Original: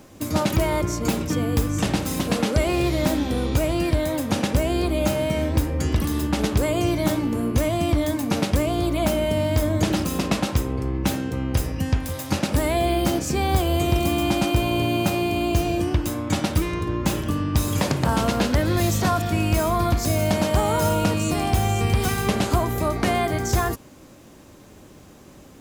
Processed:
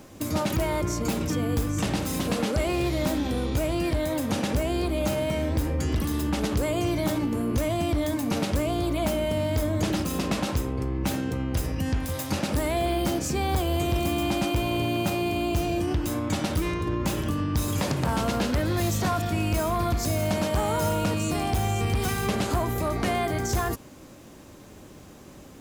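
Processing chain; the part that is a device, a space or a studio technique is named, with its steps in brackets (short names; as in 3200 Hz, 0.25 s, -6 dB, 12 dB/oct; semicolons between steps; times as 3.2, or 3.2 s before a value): clipper into limiter (hard clip -15 dBFS, distortion -18 dB; limiter -19 dBFS, peak gain reduction 4 dB)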